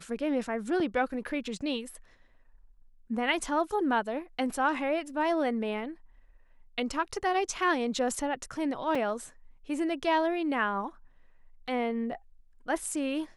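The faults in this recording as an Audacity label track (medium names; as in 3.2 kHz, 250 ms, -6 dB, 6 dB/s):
0.800000	0.800000	dropout 2.8 ms
8.950000	8.950000	dropout 3.6 ms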